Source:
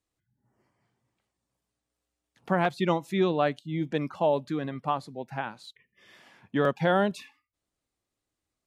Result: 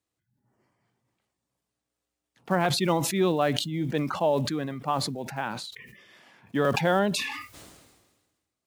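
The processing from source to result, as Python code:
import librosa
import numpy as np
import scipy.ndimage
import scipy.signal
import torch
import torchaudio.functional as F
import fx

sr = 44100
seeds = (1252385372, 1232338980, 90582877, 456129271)

y = fx.block_float(x, sr, bits=7)
y = scipy.signal.sosfilt(scipy.signal.butter(2, 72.0, 'highpass', fs=sr, output='sos'), y)
y = fx.sustainer(y, sr, db_per_s=42.0)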